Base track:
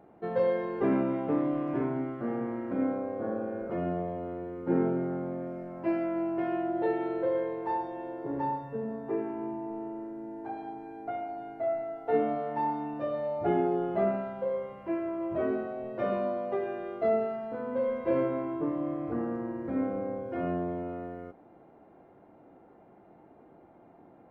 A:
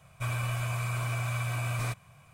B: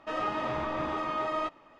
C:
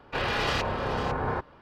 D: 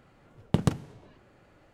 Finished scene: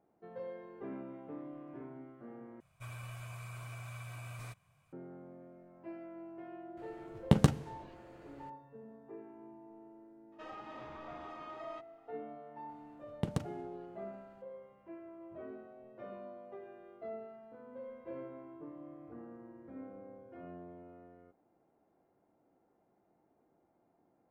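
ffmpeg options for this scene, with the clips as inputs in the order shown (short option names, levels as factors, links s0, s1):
-filter_complex "[4:a]asplit=2[s0][s1];[0:a]volume=0.133[s2];[s0]asplit=2[s3][s4];[s4]adelay=14,volume=0.355[s5];[s3][s5]amix=inputs=2:normalize=0[s6];[2:a]alimiter=limit=0.0631:level=0:latency=1:release=212[s7];[s2]asplit=2[s8][s9];[s8]atrim=end=2.604[s10];[1:a]atrim=end=2.33,asetpts=PTS-STARTPTS,volume=0.188[s11];[s9]atrim=start=4.926[s12];[s6]atrim=end=1.73,asetpts=PTS-STARTPTS,volume=0.944,afade=t=in:d=0.004:c=hsin,afade=t=out:st=1.726:d=0.004:c=hsin,adelay=6770[s13];[s7]atrim=end=1.79,asetpts=PTS-STARTPTS,volume=0.178,afade=t=in:d=0.004:c=hsin,afade=t=out:st=1.786:d=0.004:c=hsin,adelay=10320[s14];[s1]atrim=end=1.73,asetpts=PTS-STARTPTS,volume=0.299,afade=t=in:d=0.004:c=hsin,afade=t=out:st=1.726:d=0.004:c=hsin,adelay=12690[s15];[s10][s11]acrossfade=d=0.004:c1=hsin:c2=hsin[s16];[s16][s12]acrossfade=d=0.004:c1=hsin:c2=hsin[s17];[s17][s13][s14][s15]amix=inputs=4:normalize=0"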